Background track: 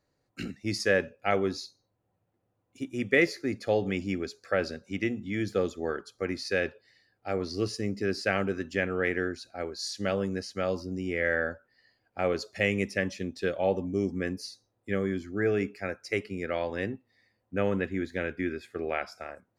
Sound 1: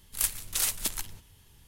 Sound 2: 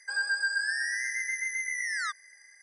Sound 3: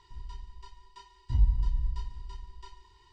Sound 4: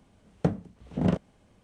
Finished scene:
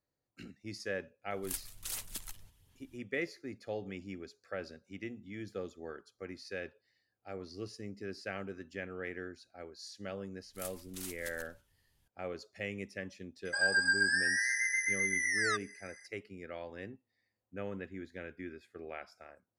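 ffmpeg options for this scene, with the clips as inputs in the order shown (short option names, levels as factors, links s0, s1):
-filter_complex "[1:a]asplit=2[s0][s1];[0:a]volume=0.224[s2];[s0]aphaser=in_gain=1:out_gain=1:delay=1.7:decay=0.36:speed=1.4:type=sinusoidal,atrim=end=1.67,asetpts=PTS-STARTPTS,volume=0.237,afade=t=in:d=0.004:c=hsin,afade=t=out:st=1.666:d=0.004:c=hsin,adelay=1300[s3];[s1]atrim=end=1.67,asetpts=PTS-STARTPTS,volume=0.141,afade=t=in:d=0.004:c=hsin,afade=t=out:st=1.666:d=0.004:c=hsin,adelay=10410[s4];[2:a]atrim=end=2.62,asetpts=PTS-STARTPTS,afade=t=in:d=0.004:c=hsin,afade=t=out:st=2.616:d=0.004:c=hsin,adelay=13450[s5];[s2][s3][s4][s5]amix=inputs=4:normalize=0"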